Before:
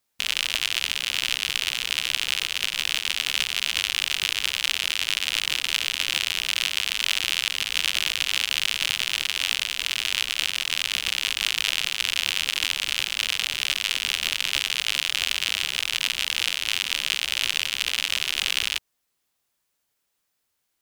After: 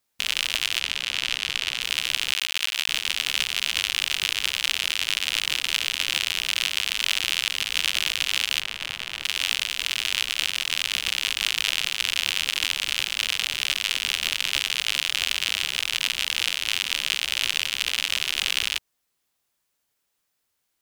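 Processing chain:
0:00.80–0:01.81: high-shelf EQ 9,400 Hz −11 dB
0:02.32–0:02.89: bit-depth reduction 6 bits, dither none
0:08.61–0:09.24: high-shelf EQ 2,600 Hz −12 dB

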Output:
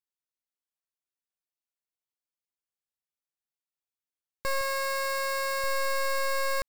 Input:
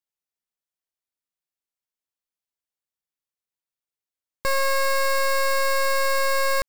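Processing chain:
0:04.61–0:05.64: low-shelf EQ 220 Hz −9 dB
level −6.5 dB

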